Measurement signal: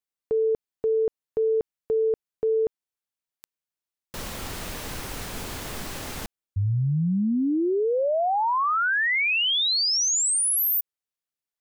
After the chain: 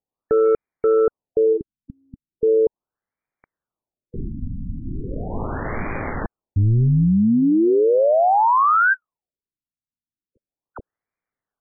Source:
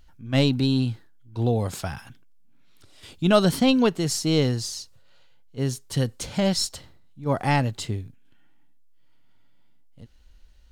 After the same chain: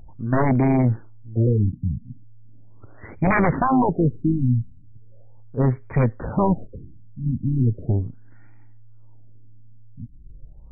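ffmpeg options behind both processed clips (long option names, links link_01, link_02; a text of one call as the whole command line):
ffmpeg -i in.wav -af "aeval=exprs='0.501*sin(PI/2*5.01*val(0)/0.501)':channel_layout=same,tremolo=f=110:d=0.462,afftfilt=real='re*lt(b*sr/1024,270*pow(2500/270,0.5+0.5*sin(2*PI*0.38*pts/sr)))':imag='im*lt(b*sr/1024,270*pow(2500/270,0.5+0.5*sin(2*PI*0.38*pts/sr)))':win_size=1024:overlap=0.75,volume=-5.5dB" out.wav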